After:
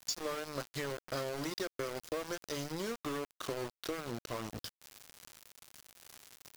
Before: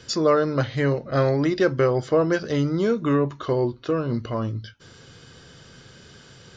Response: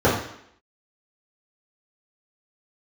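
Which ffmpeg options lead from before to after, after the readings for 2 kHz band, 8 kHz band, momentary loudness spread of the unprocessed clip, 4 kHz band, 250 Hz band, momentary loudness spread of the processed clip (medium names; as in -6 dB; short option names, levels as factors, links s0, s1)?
-12.5 dB, no reading, 7 LU, -6.5 dB, -19.0 dB, 16 LU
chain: -af "bass=f=250:g=-5,treble=f=4000:g=15,acompressor=threshold=0.02:ratio=6,aeval=exprs='val(0)*gte(abs(val(0)),0.0178)':c=same,volume=0.794"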